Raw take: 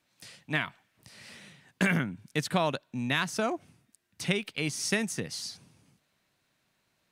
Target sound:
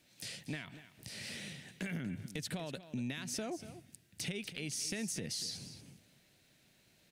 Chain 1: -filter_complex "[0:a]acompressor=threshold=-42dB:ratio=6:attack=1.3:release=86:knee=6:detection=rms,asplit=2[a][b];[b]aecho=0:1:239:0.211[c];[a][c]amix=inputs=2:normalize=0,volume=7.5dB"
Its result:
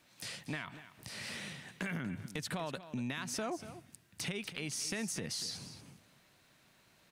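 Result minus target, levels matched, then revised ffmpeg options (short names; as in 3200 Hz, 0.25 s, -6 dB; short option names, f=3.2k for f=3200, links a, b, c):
1000 Hz band +6.0 dB
-filter_complex "[0:a]acompressor=threshold=-42dB:ratio=6:attack=1.3:release=86:knee=6:detection=rms,equalizer=f=1.1k:t=o:w=0.98:g=-12,asplit=2[a][b];[b]aecho=0:1:239:0.211[c];[a][c]amix=inputs=2:normalize=0,volume=7.5dB"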